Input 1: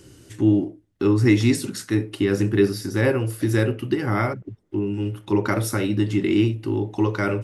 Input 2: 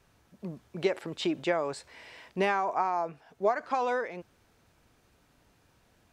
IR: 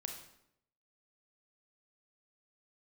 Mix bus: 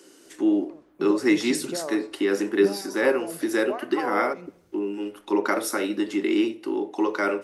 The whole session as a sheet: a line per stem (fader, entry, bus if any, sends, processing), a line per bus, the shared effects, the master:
+1.5 dB, 0.00 s, send −15 dB, Bessel high-pass filter 400 Hz, order 6; high-shelf EQ 8,500 Hz −4.5 dB
−2.0 dB, 0.25 s, send −3.5 dB, downward compressor, threshold −26 dBFS, peak gain reduction 6 dB; phaser with staggered stages 0.64 Hz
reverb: on, RT60 0.80 s, pre-delay 28 ms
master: parametric band 2,800 Hz −3.5 dB 1.4 octaves

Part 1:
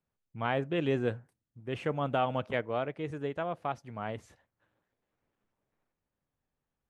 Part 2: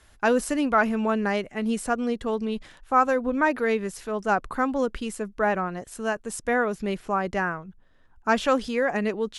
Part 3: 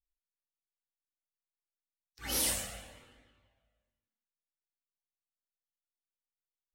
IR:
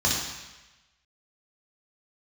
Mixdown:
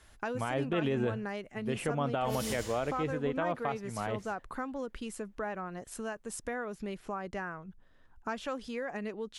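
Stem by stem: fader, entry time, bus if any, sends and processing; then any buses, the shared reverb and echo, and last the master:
+2.5 dB, 0.00 s, no send, no processing
−2.5 dB, 0.00 s, no send, downward compressor 3 to 1, threshold −35 dBFS, peak gain reduction 15.5 dB
−11.5 dB, 0.00 s, send −10.5 dB, no processing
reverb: on, RT60 1.1 s, pre-delay 3 ms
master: brickwall limiter −21 dBFS, peak gain reduction 8 dB

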